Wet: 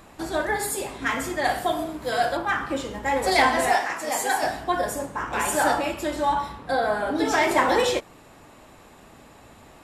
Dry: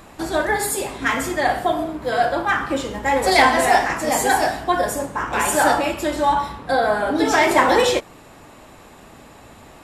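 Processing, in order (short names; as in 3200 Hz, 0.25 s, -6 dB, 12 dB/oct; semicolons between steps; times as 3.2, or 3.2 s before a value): 1.44–2.37 high shelf 3500 Hz +9.5 dB; 3.73–4.43 HPF 510 Hz 6 dB/oct; gain -5 dB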